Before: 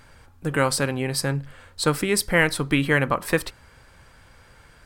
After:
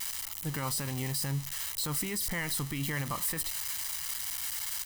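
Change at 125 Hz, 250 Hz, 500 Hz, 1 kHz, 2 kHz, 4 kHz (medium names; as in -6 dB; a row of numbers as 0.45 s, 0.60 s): -8.0 dB, -12.5 dB, -19.0 dB, -12.5 dB, -14.5 dB, -6.0 dB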